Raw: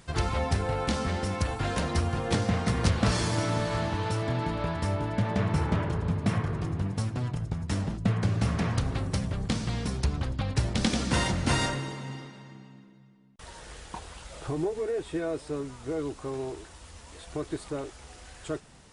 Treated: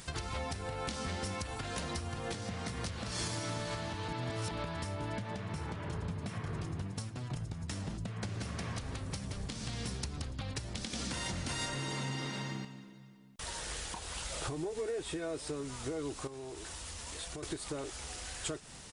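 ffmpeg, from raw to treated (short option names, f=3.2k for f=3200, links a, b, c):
-filter_complex "[0:a]asplit=3[a][b][c];[a]afade=t=out:st=8.17:d=0.02[d];[b]aecho=1:1:175:0.376,afade=t=in:st=8.17:d=0.02,afade=t=out:st=10.3:d=0.02[e];[c]afade=t=in:st=10.3:d=0.02[f];[d][e][f]amix=inputs=3:normalize=0,asettb=1/sr,asplit=3[g][h][i];[g]atrim=end=11.174[j];[h]atrim=start=11.17:end=12.65,asetpts=PTS-STARTPTS,afade=t=in:d=0.004:c=qsin,afade=t=out:st=1.476:d=0.004:c=qsin,acontrast=74[k];[i]atrim=start=12.646[l];[j][k]acrossfade=d=0.004:c1=hsin:c2=qsin[m];[m][l]acrossfade=d=0.004:c1=qsin:c2=hsin,asettb=1/sr,asplit=3[n][o][p];[n]atrim=end=16.274[q];[o]atrim=start=16.27:end=17.43,asetpts=PTS-STARTPTS,afade=t=in:d=0.004:c=qsin,afade=t=out:st=1.156:d=0.004:c=qsin,acompressor=threshold=-43dB:ratio=5:attack=3.2:release=140:knee=1:detection=peak[r];[p]atrim=start=17.426[s];[q][r]acrossfade=d=0.004:c1=hsin:c2=qsin[t];[t][s]acrossfade=d=0.004:c1=qsin:c2=hsin,asplit=4[u][v][w][x];[u]atrim=end=4.082[y];[v]atrim=start=4.078:end=4.512,asetpts=PTS-STARTPTS,areverse[z];[w]atrim=start=4.508:end=7.3,asetpts=PTS-STARTPTS,afade=t=out:st=2.332:d=0.46:c=qua:silence=0.251189[aa];[x]atrim=start=7.3,asetpts=PTS-STARTPTS,afade=t=in:d=0.004:c=hsin:silence=0.251189[ab];[y][z]acrossfade=d=0.004:c1=hsin:c2=hsin[ac];[aa][ab]concat=n=2:v=0:a=1[ad];[ac][ad]acrossfade=d=0.004:c1=hsin:c2=hsin,acompressor=threshold=-35dB:ratio=6,alimiter=level_in=6dB:limit=-24dB:level=0:latency=1:release=229,volume=-6dB,highshelf=f=2.5k:g=9,volume=1dB"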